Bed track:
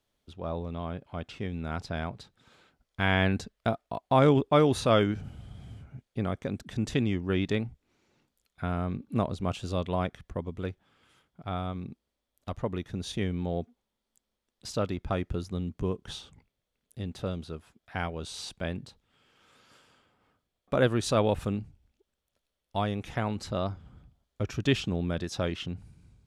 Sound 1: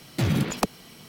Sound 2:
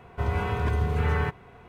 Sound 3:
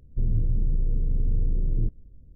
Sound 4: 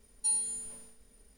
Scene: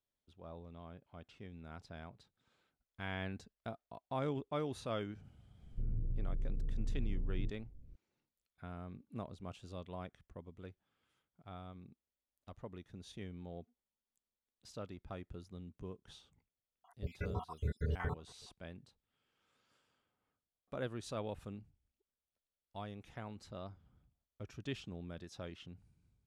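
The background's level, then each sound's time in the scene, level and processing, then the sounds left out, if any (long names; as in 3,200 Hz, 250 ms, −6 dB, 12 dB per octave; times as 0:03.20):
bed track −16.5 dB
0:05.61: mix in 3 −6.5 dB + downward compressor 3 to 1, threshold −28 dBFS
0:16.84: mix in 2 −10 dB + time-frequency cells dropped at random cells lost 74%
not used: 1, 4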